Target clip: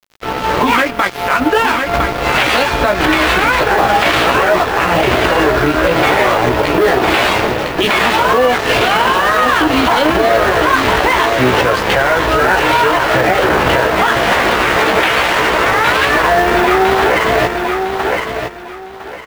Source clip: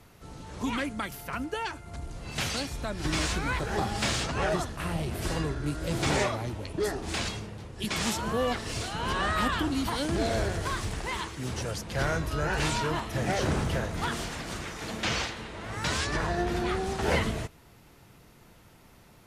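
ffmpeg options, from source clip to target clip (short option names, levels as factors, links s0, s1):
-filter_complex "[0:a]acrossover=split=350 3600:gain=0.141 1 0.0631[s0][s1][s2];[s0][s1][s2]amix=inputs=3:normalize=0,acrusher=bits=6:mode=log:mix=0:aa=0.000001,equalizer=f=6800:w=1.3:g=-12,asplit=2[s3][s4];[s4]adelay=16,volume=0.708[s5];[s3][s5]amix=inputs=2:normalize=0,acompressor=threshold=0.0126:ratio=6,aeval=exprs='sgn(val(0))*max(abs(val(0))-0.00266,0)':c=same,aecho=1:1:1007|2014|3021:0.355|0.0816|0.0188,alimiter=level_in=59.6:limit=0.891:release=50:level=0:latency=1,volume=0.891"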